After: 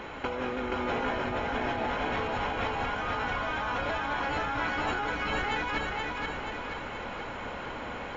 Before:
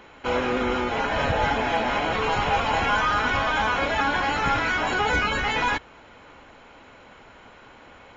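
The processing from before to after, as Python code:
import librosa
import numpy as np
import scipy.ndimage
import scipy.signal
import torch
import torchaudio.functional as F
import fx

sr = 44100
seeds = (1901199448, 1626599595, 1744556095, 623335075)

p1 = fx.high_shelf(x, sr, hz=3700.0, db=-7.0)
p2 = fx.over_compress(p1, sr, threshold_db=-33.0, ratio=-1.0)
y = p2 + fx.echo_feedback(p2, sr, ms=477, feedback_pct=56, wet_db=-3, dry=0)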